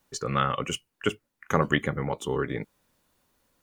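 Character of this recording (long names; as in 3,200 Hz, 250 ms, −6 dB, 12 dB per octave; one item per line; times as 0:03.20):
background noise floor −80 dBFS
spectral slope −5.0 dB per octave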